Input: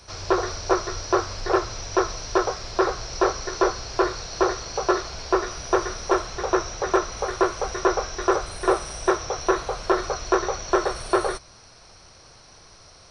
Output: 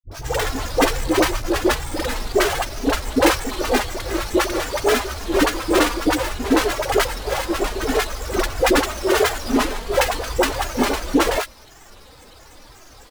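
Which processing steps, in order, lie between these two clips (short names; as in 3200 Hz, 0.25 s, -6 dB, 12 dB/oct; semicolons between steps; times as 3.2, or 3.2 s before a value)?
half-waves squared off; comb 3.4 ms, depth 90%; grains, pitch spread up and down by 7 st; dispersion highs, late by 77 ms, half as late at 550 Hz; gain -1 dB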